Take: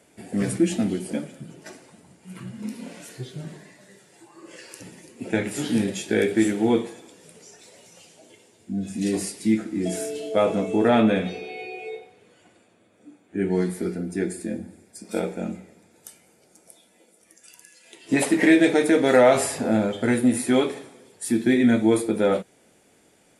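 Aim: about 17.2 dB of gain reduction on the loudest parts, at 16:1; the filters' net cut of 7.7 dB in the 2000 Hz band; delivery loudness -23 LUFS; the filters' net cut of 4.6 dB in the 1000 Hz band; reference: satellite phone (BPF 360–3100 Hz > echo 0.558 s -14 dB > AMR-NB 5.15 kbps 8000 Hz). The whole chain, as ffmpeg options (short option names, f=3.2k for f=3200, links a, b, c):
-af "equalizer=f=1k:t=o:g=-5,equalizer=f=2k:t=o:g=-7,acompressor=threshold=-31dB:ratio=16,highpass=360,lowpass=3.1k,aecho=1:1:558:0.2,volume=20dB" -ar 8000 -c:a libopencore_amrnb -b:a 5150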